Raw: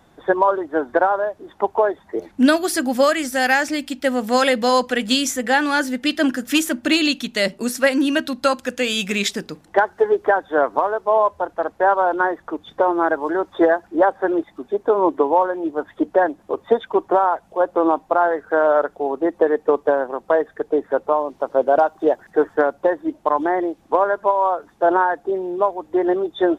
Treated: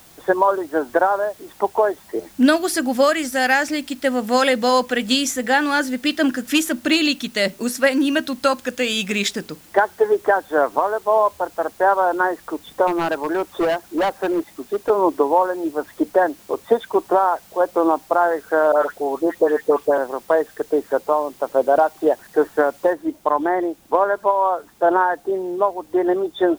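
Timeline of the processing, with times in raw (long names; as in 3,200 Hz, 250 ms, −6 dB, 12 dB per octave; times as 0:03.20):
0:12.87–0:14.90: hard clipping −16 dBFS
0:18.72–0:19.98: all-pass dispersion highs, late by 113 ms, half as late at 2,100 Hz
0:22.93: noise floor change −49 dB −56 dB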